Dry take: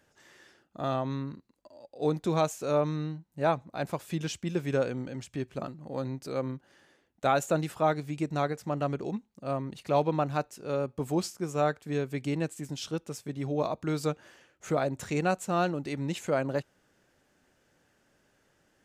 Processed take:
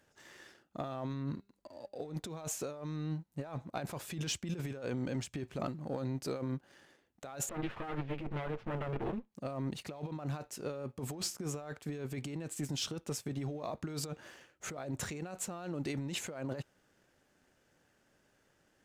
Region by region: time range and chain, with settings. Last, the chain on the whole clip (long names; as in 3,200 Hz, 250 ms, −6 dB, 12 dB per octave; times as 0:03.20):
0:01.13–0:02.14: low-shelf EQ 180 Hz +3.5 dB + hum removal 199.2 Hz, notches 31
0:07.49–0:09.32: lower of the sound and its delayed copy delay 8.9 ms + low-pass filter 3,100 Hz 24 dB per octave
whole clip: compressor whose output falls as the input rises −36 dBFS, ratio −1; leveller curve on the samples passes 1; level −6.5 dB